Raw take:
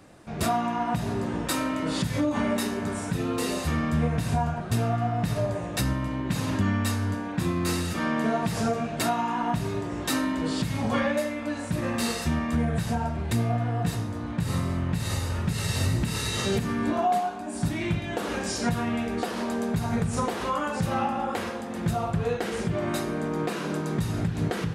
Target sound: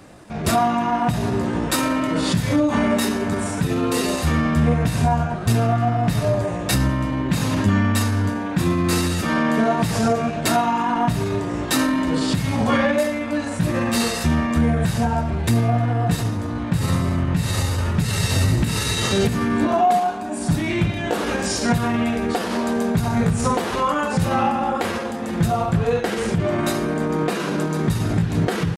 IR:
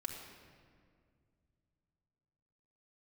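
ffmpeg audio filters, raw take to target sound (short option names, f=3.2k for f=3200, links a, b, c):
-af "atempo=0.86,acontrast=85"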